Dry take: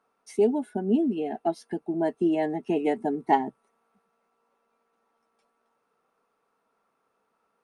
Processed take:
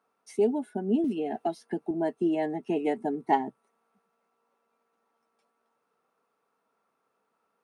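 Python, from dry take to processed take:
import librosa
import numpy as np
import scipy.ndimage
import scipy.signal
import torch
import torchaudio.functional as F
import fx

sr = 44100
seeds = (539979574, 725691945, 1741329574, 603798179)

y = scipy.signal.sosfilt(scipy.signal.butter(2, 87.0, 'highpass', fs=sr, output='sos'), x)
y = fx.band_squash(y, sr, depth_pct=100, at=(1.04, 1.91))
y = y * librosa.db_to_amplitude(-2.5)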